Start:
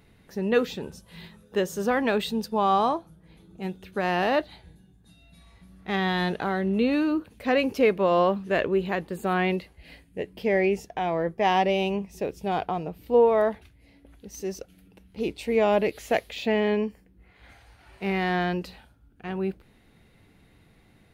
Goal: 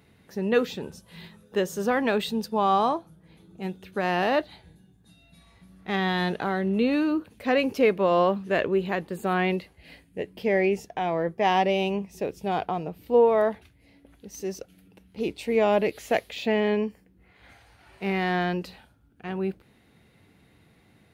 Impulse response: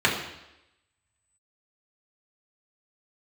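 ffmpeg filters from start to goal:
-af "highpass=75"

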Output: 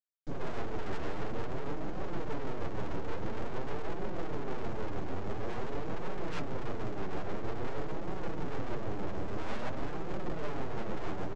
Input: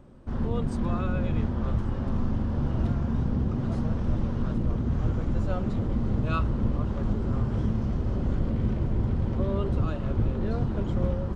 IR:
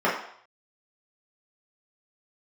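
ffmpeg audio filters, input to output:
-filter_complex "[0:a]highpass=f=110:p=1,afftfilt=real='re*gte(hypot(re,im),0.0316)':imag='im*gte(hypot(re,im),0.0316)':win_size=1024:overlap=0.75,bandreject=f=60:t=h:w=6,bandreject=f=120:t=h:w=6,bandreject=f=180:t=h:w=6,bandreject=f=240:t=h:w=6,bandreject=f=300:t=h:w=6,bandreject=f=360:t=h:w=6,bandreject=f=420:t=h:w=6,aecho=1:1:5:0.33,adynamicequalizer=threshold=0.01:dfrequency=270:dqfactor=0.83:tfrequency=270:tqfactor=0.83:attack=5:release=100:ratio=0.375:range=2.5:mode=boostabove:tftype=bell,acrossover=split=410|460[a][b][c];[a]acontrast=46[d];[d][b][c]amix=inputs=3:normalize=0,acrusher=bits=8:mix=0:aa=0.000001,aresample=16000,aeval=exprs='abs(val(0))':c=same,aresample=44100,aeval=exprs='(tanh(12.6*val(0)+0.75)-tanh(0.75))/12.6':c=same,tremolo=f=6.4:d=0.35,flanger=delay=5.2:depth=5.6:regen=-11:speed=0.49:shape=triangular,volume=8.5dB"

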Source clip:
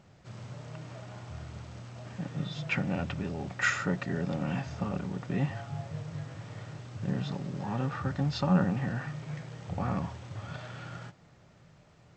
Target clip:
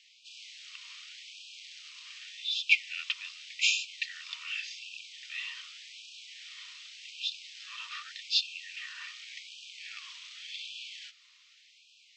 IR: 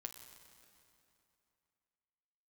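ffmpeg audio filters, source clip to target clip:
-filter_complex "[0:a]aexciter=amount=15.4:drive=5.1:freq=2.4k,highpass=210,lowpass=3.1k,asettb=1/sr,asplit=3[a][b][c];[a]atrim=end=2.034[d];[b]atrim=start=2.03:end=3.54,asetpts=PTS-STARTPTS,afade=t=in:d=0.004:c=qsin,afade=t=out:st=1.506:d=0.004:c=qsin,aeval=exprs='0.75*(cos(1*acos(clip(val(0)/0.75,-1,1)))-cos(1*PI/2))+0.0133*(cos(4*acos(clip(val(0)/0.75,-1,1)))-cos(4*PI/2))':c=same[e];[c]atrim=start=3.536[f];[d][e]acrossfade=d=0.004:c1=hsin:c2=qsin[g];[g][f]acrossfade=d=0.004:c1=qsin:c2=hsin,asplit=2[h][i];[1:a]atrim=start_sample=2205,atrim=end_sample=3969,lowshelf=f=65:g=-3.5[j];[i][j]afir=irnorm=-1:irlink=0,volume=-10.5dB[k];[h][k]amix=inputs=2:normalize=0,afftfilt=real='re*gte(b*sr/1024,940*pow(2400/940,0.5+0.5*sin(2*PI*0.86*pts/sr)))':imag='im*gte(b*sr/1024,940*pow(2400/940,0.5+0.5*sin(2*PI*0.86*pts/sr)))':win_size=1024:overlap=0.75,volume=-7dB"

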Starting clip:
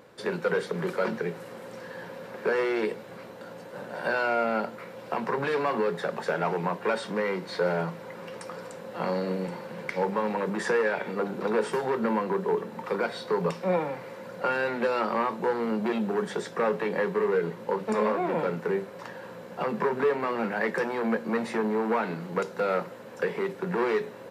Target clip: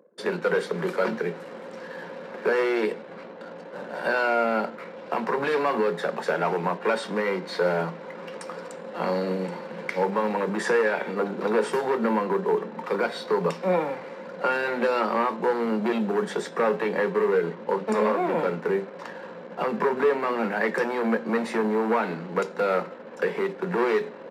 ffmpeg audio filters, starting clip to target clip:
-af "anlmdn=0.0158,highpass=f=170:w=0.5412,highpass=f=170:w=1.3066,bandreject=f=261.4:t=h:w=4,bandreject=f=522.8:t=h:w=4,bandreject=f=784.2:t=h:w=4,bandreject=f=1.0456k:t=h:w=4,bandreject=f=1.307k:t=h:w=4,bandreject=f=1.5684k:t=h:w=4,bandreject=f=1.8298k:t=h:w=4,bandreject=f=2.0912k:t=h:w=4,bandreject=f=2.3526k:t=h:w=4,bandreject=f=2.614k:t=h:w=4,bandreject=f=2.8754k:t=h:w=4,bandreject=f=3.1368k:t=h:w=4,bandreject=f=3.3982k:t=h:w=4,bandreject=f=3.6596k:t=h:w=4,bandreject=f=3.921k:t=h:w=4,bandreject=f=4.1824k:t=h:w=4,bandreject=f=4.4438k:t=h:w=4,bandreject=f=4.7052k:t=h:w=4,bandreject=f=4.9666k:t=h:w=4,bandreject=f=5.228k:t=h:w=4,bandreject=f=5.4894k:t=h:w=4,bandreject=f=5.7508k:t=h:w=4,bandreject=f=6.0122k:t=h:w=4,bandreject=f=6.2736k:t=h:w=4,bandreject=f=6.535k:t=h:w=4,bandreject=f=6.7964k:t=h:w=4,bandreject=f=7.0578k:t=h:w=4,bandreject=f=7.3192k:t=h:w=4,bandreject=f=7.5806k:t=h:w=4,bandreject=f=7.842k:t=h:w=4,bandreject=f=8.1034k:t=h:w=4,bandreject=f=8.3648k:t=h:w=4,bandreject=f=8.6262k:t=h:w=4,bandreject=f=8.8876k:t=h:w=4,volume=3dB"

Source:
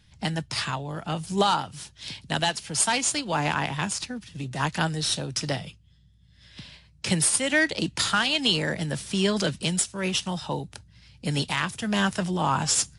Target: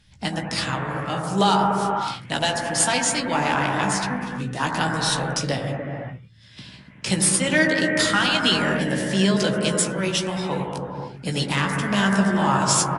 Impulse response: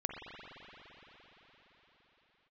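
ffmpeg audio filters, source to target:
-filter_complex "[0:a]bandreject=f=60:t=h:w=6,bandreject=f=120:t=h:w=6,bandreject=f=180:t=h:w=6,asplit=2[a][b];[b]adelay=16,volume=-6dB[c];[a][c]amix=inputs=2:normalize=0[d];[1:a]atrim=start_sample=2205,afade=t=out:st=0.39:d=0.01,atrim=end_sample=17640,asetrate=26019,aresample=44100[e];[d][e]afir=irnorm=-1:irlink=0"

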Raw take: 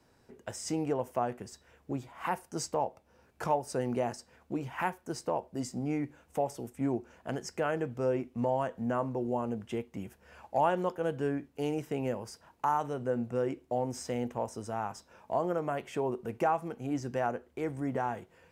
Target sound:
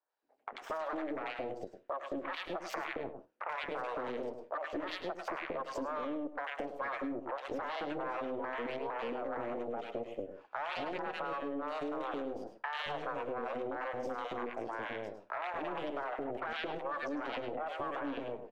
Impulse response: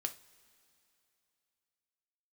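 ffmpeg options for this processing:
-filter_complex "[0:a]equalizer=f=280:t=o:w=0.78:g=14,aeval=exprs='0.316*(cos(1*acos(clip(val(0)/0.316,-1,1)))-cos(1*PI/2))+0.0251*(cos(5*acos(clip(val(0)/0.316,-1,1)))-cos(5*PI/2))+0.0501*(cos(7*acos(clip(val(0)/0.316,-1,1)))-cos(7*PI/2))+0.1*(cos(8*acos(clip(val(0)/0.316,-1,1)))-cos(8*PI/2))':c=same,acrossover=split=320 4600:gain=0.0794 1 0.1[a][b][c];[a][b][c]amix=inputs=3:normalize=0,bandreject=f=5.1k:w=28,acrossover=split=590|1900[d][e][f];[f]adelay=90[g];[d]adelay=220[h];[h][e][g]amix=inputs=3:normalize=0,aeval=exprs='0.2*(cos(1*acos(clip(val(0)/0.2,-1,1)))-cos(1*PI/2))+0.00708*(cos(5*acos(clip(val(0)/0.2,-1,1)))-cos(5*PI/2))':c=same,agate=range=-10dB:threshold=-56dB:ratio=16:detection=peak,alimiter=level_in=1dB:limit=-24dB:level=0:latency=1,volume=-1dB,asplit=2[i][j];[1:a]atrim=start_sample=2205,atrim=end_sample=4410,adelay=104[k];[j][k]afir=irnorm=-1:irlink=0,volume=-10dB[l];[i][l]amix=inputs=2:normalize=0,acompressor=threshold=-36dB:ratio=6,volume=1dB"

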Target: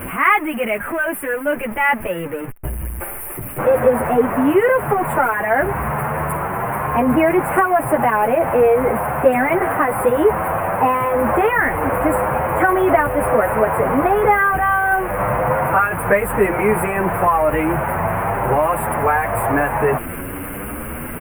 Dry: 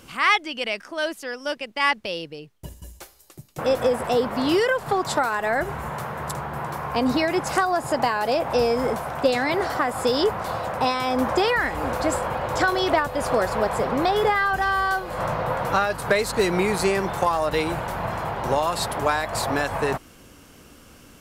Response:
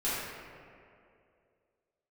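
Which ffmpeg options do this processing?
-filter_complex "[0:a]aeval=exprs='val(0)+0.5*0.0473*sgn(val(0))':c=same,asuperstop=centerf=5000:order=8:qfactor=0.69,asplit=2[a][b];[b]adelay=8.6,afreqshift=0.94[c];[a][c]amix=inputs=2:normalize=1,volume=7.5dB"

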